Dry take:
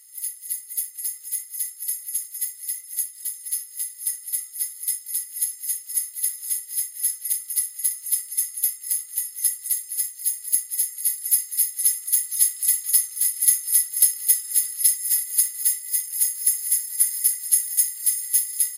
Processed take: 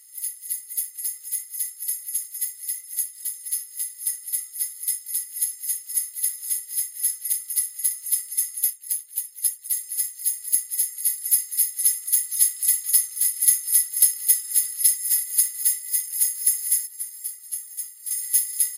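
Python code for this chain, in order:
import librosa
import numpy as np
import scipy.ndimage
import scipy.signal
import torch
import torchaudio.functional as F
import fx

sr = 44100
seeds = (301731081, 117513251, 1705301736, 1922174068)

y = fx.hpss(x, sr, part='harmonic', gain_db=-15, at=(8.7, 9.73))
y = fx.comb_fb(y, sr, f0_hz=260.0, decay_s=0.19, harmonics='odd', damping=0.0, mix_pct=80, at=(16.87, 18.11))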